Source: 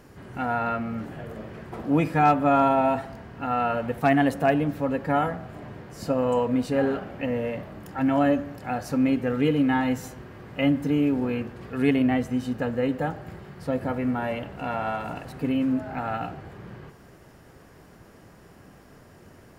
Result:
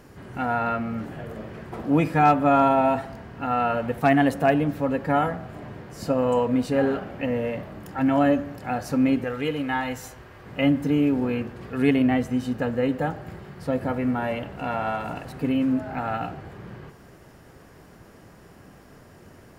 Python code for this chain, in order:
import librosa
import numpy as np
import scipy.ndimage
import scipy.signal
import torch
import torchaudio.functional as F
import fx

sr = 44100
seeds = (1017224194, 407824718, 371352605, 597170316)

y = fx.peak_eq(x, sr, hz=210.0, db=-10.5, octaves=1.9, at=(9.24, 10.46))
y = F.gain(torch.from_numpy(y), 1.5).numpy()